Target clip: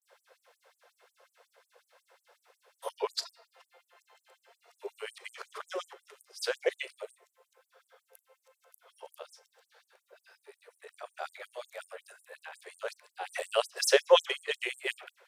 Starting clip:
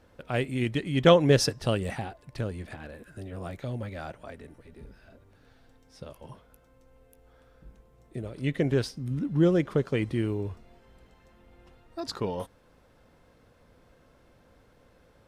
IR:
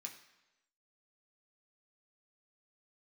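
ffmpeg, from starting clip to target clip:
-filter_complex "[0:a]areverse,asplit=2[a][b];[1:a]atrim=start_sample=2205,adelay=37[c];[b][c]afir=irnorm=-1:irlink=0,volume=-11.5dB[d];[a][d]amix=inputs=2:normalize=0,afftfilt=real='re*gte(b*sr/1024,370*pow(7600/370,0.5+0.5*sin(2*PI*5.5*pts/sr)))':imag='im*gte(b*sr/1024,370*pow(7600/370,0.5+0.5*sin(2*PI*5.5*pts/sr)))':win_size=1024:overlap=0.75,volume=3dB"

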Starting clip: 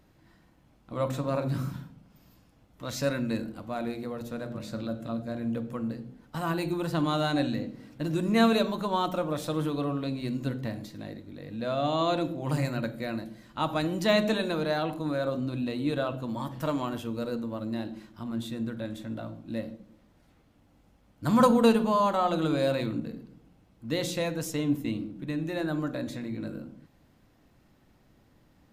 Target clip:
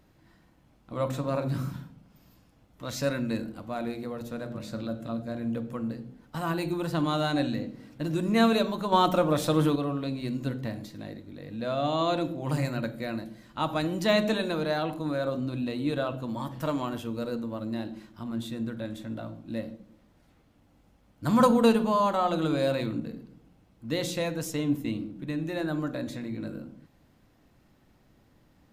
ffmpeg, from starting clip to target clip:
-filter_complex "[0:a]asettb=1/sr,asplit=3[a][b][c];[a]atrim=end=8.924[d];[b]atrim=start=8.92:end=9.76,asetpts=PTS-STARTPTS,afade=t=in:d=0.004:c=qsin,afade=t=out:st=0.836:d=0.004:c=qsin,acontrast=50[e];[c]atrim=start=9.756[f];[d][e]acrossfade=d=0.004:c1=hsin:c2=qsin[g];[g][f]acrossfade=d=0.004:c1=qsin:c2=hsin"

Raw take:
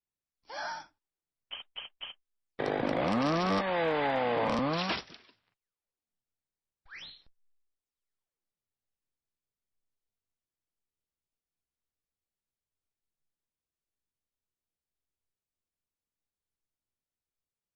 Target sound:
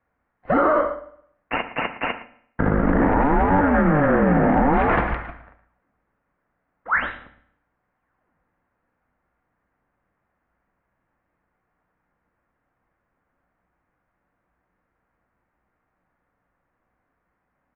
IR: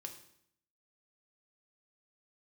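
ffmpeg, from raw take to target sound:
-filter_complex "[0:a]bandreject=f=700:w=12,areverse,acompressor=threshold=-39dB:ratio=12,areverse,aecho=1:1:112:0.2,asplit=2[a][b];[1:a]atrim=start_sample=2205[c];[b][c]afir=irnorm=-1:irlink=0,volume=5.5dB[d];[a][d]amix=inputs=2:normalize=0,aeval=exprs='0.075*(cos(1*acos(clip(val(0)/0.075,-1,1)))-cos(1*PI/2))+0.00299*(cos(7*acos(clip(val(0)/0.075,-1,1)))-cos(7*PI/2))':c=same,highpass=f=310:t=q:w=0.5412,highpass=f=310:t=q:w=1.307,lowpass=f=2.1k:t=q:w=0.5176,lowpass=f=2.1k:t=q:w=0.7071,lowpass=f=2.1k:t=q:w=1.932,afreqshift=-300,alimiter=level_in=34dB:limit=-1dB:release=50:level=0:latency=1,volume=-8.5dB"

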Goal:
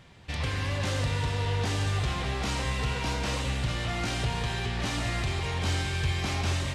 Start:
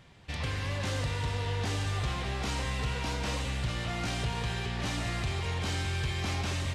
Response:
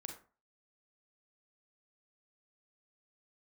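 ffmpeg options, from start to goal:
-filter_complex "[0:a]asplit=2[a][b];[1:a]atrim=start_sample=2205,asetrate=24255,aresample=44100[c];[b][c]afir=irnorm=-1:irlink=0,volume=-6dB[d];[a][d]amix=inputs=2:normalize=0"

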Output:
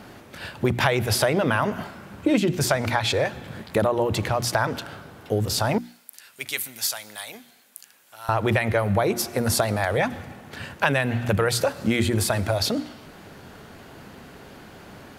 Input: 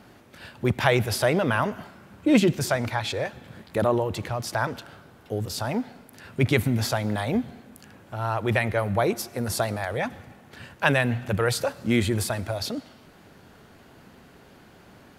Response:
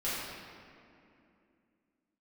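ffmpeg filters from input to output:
-filter_complex "[0:a]asettb=1/sr,asplit=3[a][b][c];[a]atrim=end=5.784[d];[b]atrim=start=5.78:end=8.29,asetpts=PTS-STARTPTS,afade=t=in:d=0.004:c=qsin,afade=t=out:st=2.506:d=0.004:c=qsin,aderivative[e];[c]atrim=start=8.286[f];[d][e]acrossfade=d=0.004:c1=hsin:c2=qsin[g];[g][f]acrossfade=d=0.004:c1=qsin:c2=hsin,bandreject=f=60:t=h:w=6,bandreject=f=120:t=h:w=6,bandreject=f=180:t=h:w=6,bandreject=f=240:t=h:w=6,bandreject=f=300:t=h:w=6,bandreject=f=360:t=h:w=6,acompressor=threshold=-25dB:ratio=6,volume=7.5dB"

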